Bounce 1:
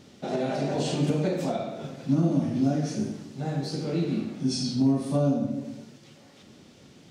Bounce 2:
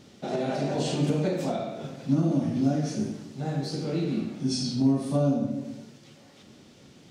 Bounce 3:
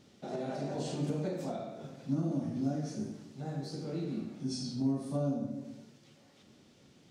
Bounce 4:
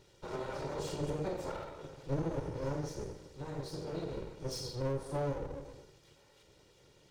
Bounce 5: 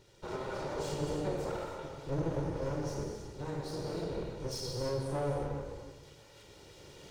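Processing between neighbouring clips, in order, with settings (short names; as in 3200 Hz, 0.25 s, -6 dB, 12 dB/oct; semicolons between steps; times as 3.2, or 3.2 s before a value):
de-hum 85.7 Hz, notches 33
dynamic EQ 2800 Hz, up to -5 dB, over -53 dBFS, Q 1.3; gain -8.5 dB
minimum comb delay 2.1 ms
recorder AGC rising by 6.1 dB/s; non-linear reverb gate 0.34 s flat, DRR 2.5 dB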